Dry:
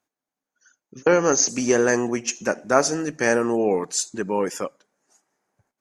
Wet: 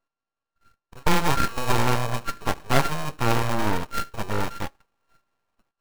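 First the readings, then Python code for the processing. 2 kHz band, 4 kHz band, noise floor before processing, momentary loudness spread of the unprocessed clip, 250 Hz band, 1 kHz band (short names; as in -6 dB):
-2.5 dB, +0.5 dB, under -85 dBFS, 7 LU, -5.5 dB, +2.0 dB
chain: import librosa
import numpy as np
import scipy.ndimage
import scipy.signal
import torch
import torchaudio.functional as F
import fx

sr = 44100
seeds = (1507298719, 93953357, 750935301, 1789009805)

y = np.r_[np.sort(x[:len(x) // 32 * 32].reshape(-1, 32), axis=1).ravel(), x[len(x) // 32 * 32:]]
y = np.abs(y)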